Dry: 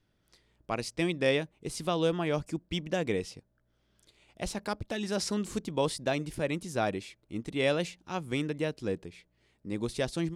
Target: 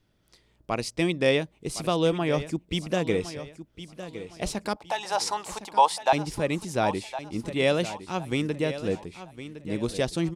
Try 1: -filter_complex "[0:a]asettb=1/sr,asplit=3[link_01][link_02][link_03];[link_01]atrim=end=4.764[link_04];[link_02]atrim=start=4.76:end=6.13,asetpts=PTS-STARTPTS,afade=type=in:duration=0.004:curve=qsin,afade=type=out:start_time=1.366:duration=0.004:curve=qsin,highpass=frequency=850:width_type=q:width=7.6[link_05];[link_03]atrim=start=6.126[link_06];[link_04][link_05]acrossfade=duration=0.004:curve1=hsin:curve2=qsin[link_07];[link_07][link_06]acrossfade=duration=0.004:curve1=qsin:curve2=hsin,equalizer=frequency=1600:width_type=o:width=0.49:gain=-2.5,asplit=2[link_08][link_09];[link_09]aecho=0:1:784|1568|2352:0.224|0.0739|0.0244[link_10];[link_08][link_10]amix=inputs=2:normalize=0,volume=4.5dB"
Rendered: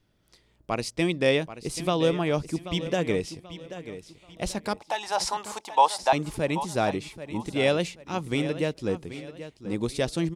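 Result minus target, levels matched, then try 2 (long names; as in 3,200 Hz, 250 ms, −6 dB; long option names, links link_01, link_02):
echo 277 ms early
-filter_complex "[0:a]asettb=1/sr,asplit=3[link_01][link_02][link_03];[link_01]atrim=end=4.764[link_04];[link_02]atrim=start=4.76:end=6.13,asetpts=PTS-STARTPTS,afade=type=in:duration=0.004:curve=qsin,afade=type=out:start_time=1.366:duration=0.004:curve=qsin,highpass=frequency=850:width_type=q:width=7.6[link_05];[link_03]atrim=start=6.126[link_06];[link_04][link_05]acrossfade=duration=0.004:curve1=hsin:curve2=qsin[link_07];[link_07][link_06]acrossfade=duration=0.004:curve1=qsin:curve2=hsin,equalizer=frequency=1600:width_type=o:width=0.49:gain=-2.5,asplit=2[link_08][link_09];[link_09]aecho=0:1:1061|2122|3183:0.224|0.0739|0.0244[link_10];[link_08][link_10]amix=inputs=2:normalize=0,volume=4.5dB"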